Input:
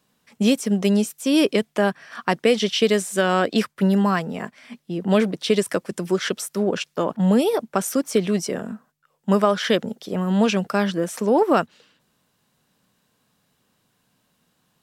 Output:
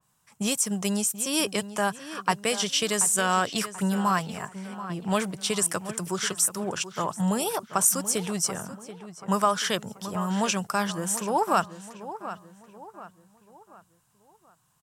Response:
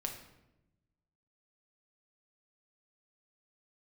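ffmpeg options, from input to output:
-filter_complex "[0:a]equalizer=frequency=125:width_type=o:width=1:gain=5,equalizer=frequency=250:width_type=o:width=1:gain=-12,equalizer=frequency=500:width_type=o:width=1:gain=-9,equalizer=frequency=1000:width_type=o:width=1:gain=5,equalizer=frequency=2000:width_type=o:width=1:gain=-5,equalizer=frequency=4000:width_type=o:width=1:gain=-7,equalizer=frequency=8000:width_type=o:width=1:gain=7,asplit=2[link_01][link_02];[link_02]adelay=733,lowpass=frequency=3500:poles=1,volume=-12.5dB,asplit=2[link_03][link_04];[link_04]adelay=733,lowpass=frequency=3500:poles=1,volume=0.42,asplit=2[link_05][link_06];[link_06]adelay=733,lowpass=frequency=3500:poles=1,volume=0.42,asplit=2[link_07][link_08];[link_08]adelay=733,lowpass=frequency=3500:poles=1,volume=0.42[link_09];[link_01][link_03][link_05][link_07][link_09]amix=inputs=5:normalize=0,adynamicequalizer=threshold=0.0126:dfrequency=2500:dqfactor=0.7:tfrequency=2500:tqfactor=0.7:attack=5:release=100:ratio=0.375:range=2.5:mode=boostabove:tftype=highshelf,volume=-1dB"

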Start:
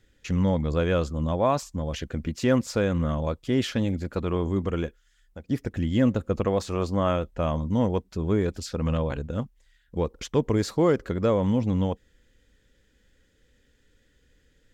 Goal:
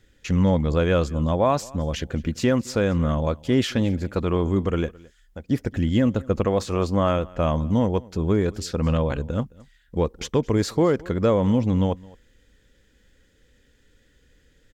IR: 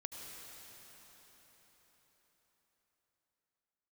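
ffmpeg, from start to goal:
-filter_complex "[0:a]alimiter=limit=-13.5dB:level=0:latency=1:release=336,asplit=2[link_01][link_02];[link_02]aecho=0:1:216:0.0668[link_03];[link_01][link_03]amix=inputs=2:normalize=0,volume=4dB"

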